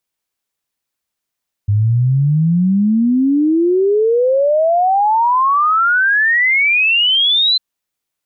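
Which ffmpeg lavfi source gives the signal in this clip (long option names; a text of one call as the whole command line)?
ffmpeg -f lavfi -i "aevalsrc='0.316*clip(min(t,5.9-t)/0.01,0,1)*sin(2*PI*100*5.9/log(4100/100)*(exp(log(4100/100)*t/5.9)-1))':duration=5.9:sample_rate=44100" out.wav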